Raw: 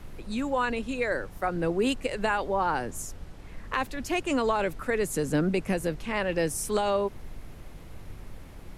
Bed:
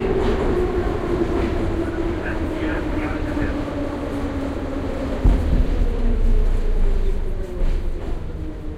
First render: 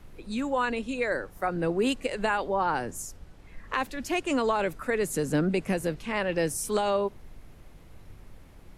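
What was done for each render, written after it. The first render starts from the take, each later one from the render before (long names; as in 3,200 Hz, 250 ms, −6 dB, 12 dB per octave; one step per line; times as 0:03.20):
noise reduction from a noise print 6 dB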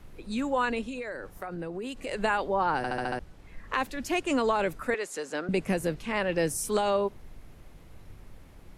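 0:00.83–0:02.07: downward compressor 12 to 1, threshold −32 dBFS
0:02.77: stutter in place 0.07 s, 6 plays
0:04.94–0:05.49: band-pass filter 590–6,600 Hz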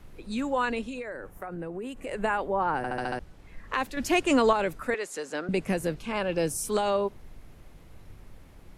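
0:01.02–0:02.98: parametric band 4,500 Hz −11 dB 1.1 octaves
0:03.97–0:04.53: clip gain +4.5 dB
0:05.98–0:06.66: notch filter 1,900 Hz, Q 5.6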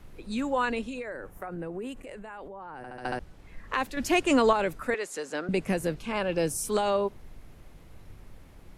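0:02.02–0:03.05: output level in coarse steps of 21 dB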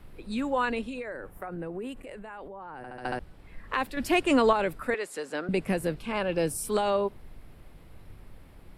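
parametric band 6,400 Hz −10 dB 0.39 octaves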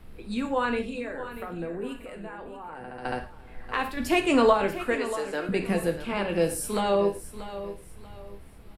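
repeating echo 636 ms, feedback 31%, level −13 dB
reverb whose tail is shaped and stops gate 150 ms falling, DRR 4.5 dB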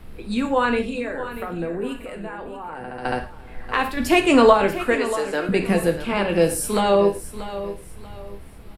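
level +6.5 dB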